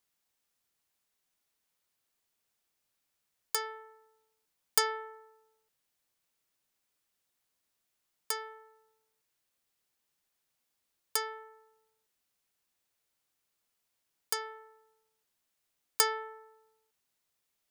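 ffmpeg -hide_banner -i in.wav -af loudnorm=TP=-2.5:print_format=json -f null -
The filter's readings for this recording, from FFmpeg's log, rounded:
"input_i" : "-33.0",
"input_tp" : "-5.6",
"input_lra" : "9.0",
"input_thresh" : "-45.4",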